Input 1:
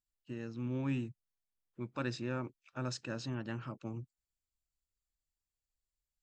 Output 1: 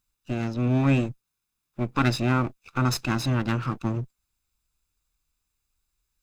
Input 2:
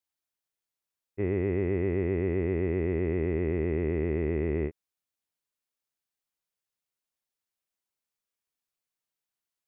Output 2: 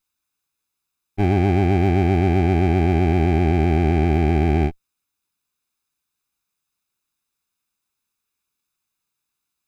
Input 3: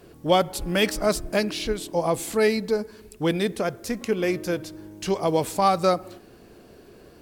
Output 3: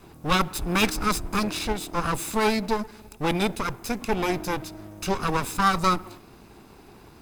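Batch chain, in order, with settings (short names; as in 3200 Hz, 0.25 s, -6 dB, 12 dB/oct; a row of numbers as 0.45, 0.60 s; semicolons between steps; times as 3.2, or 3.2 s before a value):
minimum comb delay 0.79 ms; normalise peaks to -9 dBFS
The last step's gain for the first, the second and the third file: +14.5, +10.5, +2.0 dB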